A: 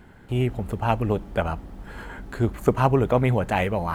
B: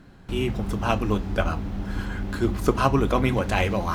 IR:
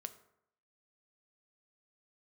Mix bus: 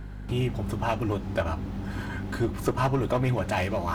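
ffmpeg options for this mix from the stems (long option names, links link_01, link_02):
-filter_complex "[0:a]volume=-0.5dB[link_01];[1:a]highpass=63,aeval=exprs='val(0)+0.0158*(sin(2*PI*50*n/s)+sin(2*PI*2*50*n/s)/2+sin(2*PI*3*50*n/s)/3+sin(2*PI*4*50*n/s)/4+sin(2*PI*5*50*n/s)/5)':channel_layout=same,aeval=exprs='clip(val(0),-1,0.1)':channel_layout=same,volume=-1dB[link_02];[link_01][link_02]amix=inputs=2:normalize=0,acompressor=threshold=-32dB:ratio=1.5"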